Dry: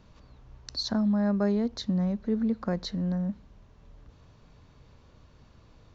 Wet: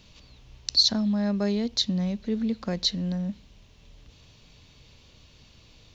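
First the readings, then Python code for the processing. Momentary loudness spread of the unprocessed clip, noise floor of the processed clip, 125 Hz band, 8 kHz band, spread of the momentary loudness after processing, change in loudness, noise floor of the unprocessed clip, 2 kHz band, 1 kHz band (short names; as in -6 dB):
9 LU, -56 dBFS, 0.0 dB, n/a, 11 LU, +3.0 dB, -57 dBFS, +1.5 dB, -1.5 dB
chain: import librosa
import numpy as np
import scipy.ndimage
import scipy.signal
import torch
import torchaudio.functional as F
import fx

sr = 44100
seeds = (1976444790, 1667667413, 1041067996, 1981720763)

y = fx.high_shelf_res(x, sr, hz=2000.0, db=11.0, q=1.5)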